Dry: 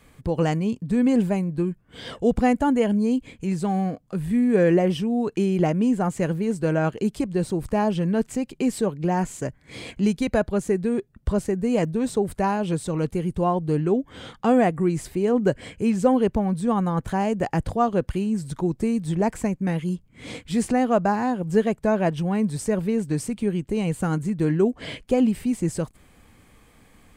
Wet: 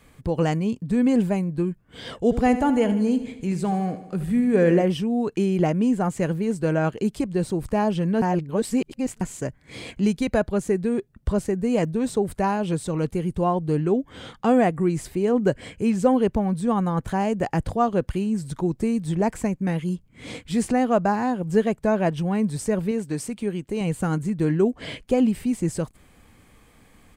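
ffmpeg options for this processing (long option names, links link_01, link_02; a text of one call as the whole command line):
ffmpeg -i in.wav -filter_complex "[0:a]asplit=3[link_01][link_02][link_03];[link_01]afade=type=out:start_time=2.3:duration=0.02[link_04];[link_02]aecho=1:1:76|152|228|304|380|456|532:0.237|0.14|0.0825|0.0487|0.0287|0.017|0.01,afade=type=in:start_time=2.3:duration=0.02,afade=type=out:start_time=4.82:duration=0.02[link_05];[link_03]afade=type=in:start_time=4.82:duration=0.02[link_06];[link_04][link_05][link_06]amix=inputs=3:normalize=0,asettb=1/sr,asplit=3[link_07][link_08][link_09];[link_07]atrim=end=22.914[link_10];[link_08]atrim=start=22.91:end=23.81,asetpts=PTS-STARTPTS,afade=type=in:duration=0.004:curve=qsin,afade=type=out:start_time=0.896:duration=0.004:curve=qsin,lowshelf=frequency=180:gain=-8.5[link_11];[link_09]atrim=start=23.806[link_12];[link_10][link_11]acrossfade=duration=0.004:curve1=hsin:curve2=qsin[link_13];[link_13][link_12]acrossfade=duration=0.004:curve1=qsin:curve2=hsin,asplit=3[link_14][link_15][link_16];[link_14]atrim=end=8.222[link_17];[link_15]atrim=start=8.218:end=9.212,asetpts=PTS-STARTPTS,areverse[link_18];[link_16]atrim=start=9.208[link_19];[link_17][link_18]acrossfade=duration=0.004:curve1=hsin:curve2=hsin[link_20];[link_20][link_19]acrossfade=duration=0.004:curve1=hsin:curve2=hsin" out.wav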